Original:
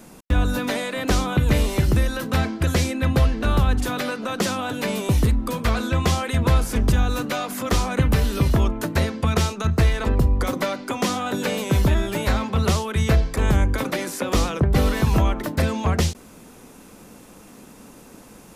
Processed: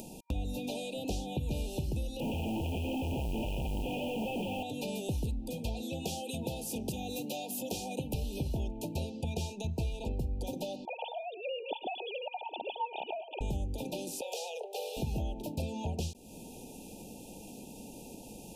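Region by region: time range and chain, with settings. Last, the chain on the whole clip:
0:02.20–0:04.63: sign of each sample alone + Butterworth low-pass 3,200 Hz 96 dB per octave + noise that follows the level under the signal 22 dB
0:05.82–0:08.14: high-pass filter 160 Hz + high-shelf EQ 11,000 Hz +9.5 dB
0:10.85–0:13.41: three sine waves on the formant tracks + high-pass with resonance 830 Hz, resonance Q 1.6 + single-tap delay 107 ms −18.5 dB
0:14.21–0:14.97: Butterworth high-pass 420 Hz 96 dB per octave + saturating transformer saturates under 1,300 Hz
whole clip: downward compressor 2.5 to 1, threshold −28 dBFS; brick-wall band-stop 940–2,400 Hz; upward compression, threshold −33 dBFS; level −7 dB

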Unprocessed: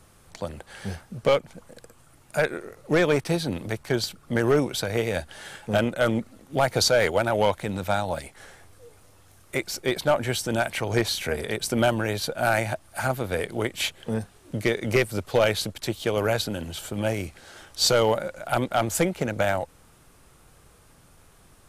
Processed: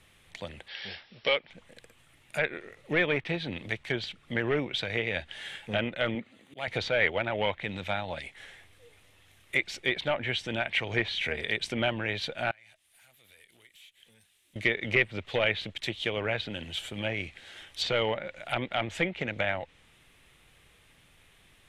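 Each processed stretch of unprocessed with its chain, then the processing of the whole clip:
0:00.68–0:01.50: linear-phase brick-wall low-pass 5,700 Hz + bass and treble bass −12 dB, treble +14 dB
0:06.15–0:06.68: high-pass filter 140 Hz + notch filter 5,400 Hz, Q 5.5 + volume swells 209 ms
0:12.51–0:14.56: first-order pre-emphasis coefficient 0.9 + downward compressor 12 to 1, threshold −46 dBFS + tube saturation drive 49 dB, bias 0.35
whole clip: treble cut that deepens with the level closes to 2,600 Hz, closed at −20 dBFS; flat-topped bell 2,600 Hz +12.5 dB 1.3 octaves; level −8 dB

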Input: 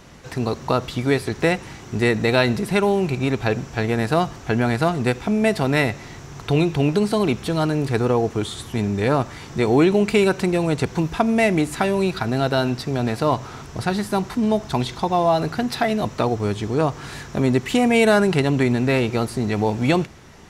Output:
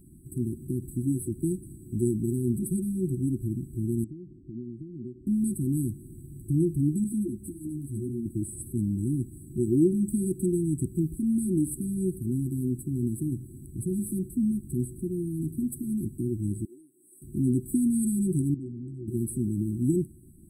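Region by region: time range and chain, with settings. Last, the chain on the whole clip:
0:04.04–0:05.27: low-pass filter 3,600 Hz 24 dB per octave + low-shelf EQ 160 Hz −12 dB + downward compressor 2.5 to 1, threshold −30 dBFS
0:07.04–0:08.26: notch comb filter 160 Hz + string-ensemble chorus
0:16.65–0:17.22: four-pole ladder high-pass 420 Hz, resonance 35% + downward compressor 2 to 1, threshold −32 dBFS
0:18.54–0:19.08: Savitzky-Golay smoothing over 65 samples + saturating transformer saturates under 1,900 Hz
whole clip: brick-wall band-stop 380–7,800 Hz; tilt shelving filter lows −3.5 dB, about 1,400 Hz; level −1.5 dB

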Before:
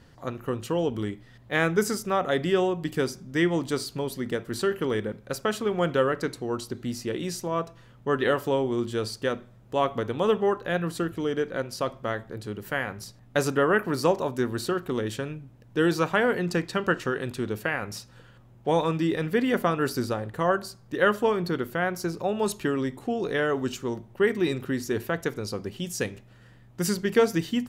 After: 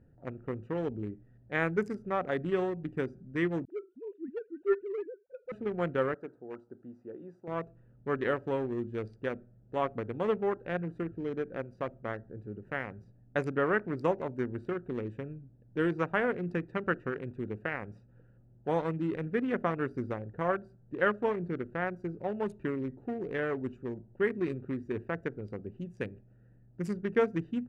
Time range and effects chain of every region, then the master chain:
0:03.65–0:05.52: three sine waves on the formant tracks + all-pass dispersion highs, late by 45 ms, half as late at 320 Hz + one half of a high-frequency compander decoder only
0:06.14–0:07.48: high-pass filter 660 Hz 6 dB per octave + high shelf with overshoot 1,700 Hz −9 dB, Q 1.5
whole clip: adaptive Wiener filter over 41 samples; Bessel low-pass filter 8,400 Hz; high shelf with overshoot 2,900 Hz −7.5 dB, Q 1.5; level −6 dB

